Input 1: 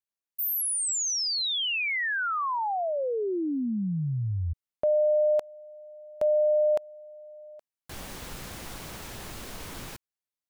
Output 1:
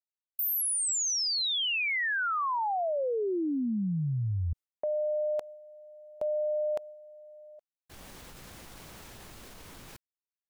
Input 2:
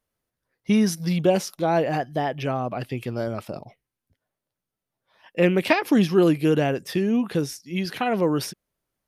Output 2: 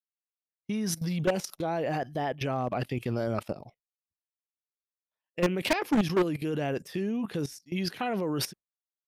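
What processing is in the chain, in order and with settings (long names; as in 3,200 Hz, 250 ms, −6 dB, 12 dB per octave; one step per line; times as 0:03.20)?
output level in coarse steps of 16 dB
hard clipping −22.5 dBFS
downward expander −44 dBFS
level +2.5 dB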